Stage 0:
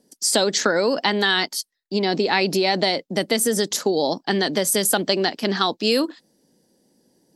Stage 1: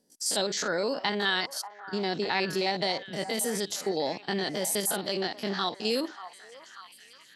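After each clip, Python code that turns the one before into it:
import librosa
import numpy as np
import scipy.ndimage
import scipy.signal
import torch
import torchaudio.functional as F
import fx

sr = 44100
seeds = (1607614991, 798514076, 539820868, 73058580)

y = fx.spec_steps(x, sr, hold_ms=50)
y = fx.peak_eq(y, sr, hz=270.0, db=-3.5, octaves=1.5)
y = fx.echo_stepped(y, sr, ms=588, hz=920.0, octaves=0.7, feedback_pct=70, wet_db=-9.5)
y = y * librosa.db_to_amplitude(-6.0)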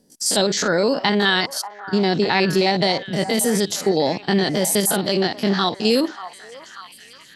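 y = fx.low_shelf(x, sr, hz=200.0, db=11.5)
y = y * librosa.db_to_amplitude(8.5)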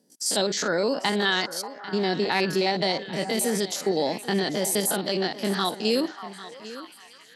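y = scipy.signal.sosfilt(scipy.signal.butter(2, 180.0, 'highpass', fs=sr, output='sos'), x)
y = y + 10.0 ** (-16.0 / 20.0) * np.pad(y, (int(795 * sr / 1000.0), 0))[:len(y)]
y = y * librosa.db_to_amplitude(-5.5)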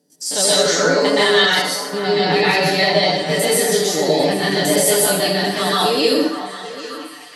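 y = x + 0.79 * np.pad(x, (int(6.8 * sr / 1000.0), 0))[:len(x)]
y = fx.rev_plate(y, sr, seeds[0], rt60_s=0.78, hf_ratio=1.0, predelay_ms=110, drr_db=-7.5)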